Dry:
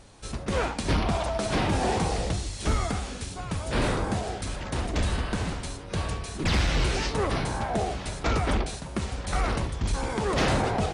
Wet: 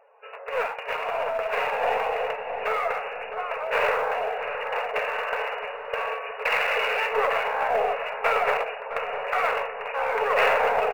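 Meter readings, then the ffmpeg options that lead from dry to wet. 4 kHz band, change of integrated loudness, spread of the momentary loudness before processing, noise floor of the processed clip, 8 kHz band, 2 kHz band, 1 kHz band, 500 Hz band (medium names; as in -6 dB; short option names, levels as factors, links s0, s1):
-2.0 dB, +2.5 dB, 8 LU, -38 dBFS, under -15 dB, +7.5 dB, +6.0 dB, +5.5 dB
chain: -filter_complex "[0:a]highshelf=f=2300:g=-9,afftfilt=real='re*between(b*sr/4096,410,2900)':imag='im*between(b*sr/4096,410,2900)':win_size=4096:overlap=0.75,afftdn=nr=12:nf=-58,bandreject=f=770:w=24,crystalizer=i=3.5:c=0,asplit=2[s0][s1];[s1]aeval=exprs='clip(val(0),-1,0.0188)':c=same,volume=0.398[s2];[s0][s2]amix=inputs=2:normalize=0,aemphasis=mode=production:type=50fm,asplit=2[s3][s4];[s4]adelay=662,lowpass=f=1100:p=1,volume=0.398,asplit=2[s5][s6];[s6]adelay=662,lowpass=f=1100:p=1,volume=0.54,asplit=2[s7][s8];[s8]adelay=662,lowpass=f=1100:p=1,volume=0.54,asplit=2[s9][s10];[s10]adelay=662,lowpass=f=1100:p=1,volume=0.54,asplit=2[s11][s12];[s12]adelay=662,lowpass=f=1100:p=1,volume=0.54,asplit=2[s13][s14];[s14]adelay=662,lowpass=f=1100:p=1,volume=0.54[s15];[s3][s5][s7][s9][s11][s13][s15]amix=inputs=7:normalize=0,dynaudnorm=f=330:g=13:m=1.78"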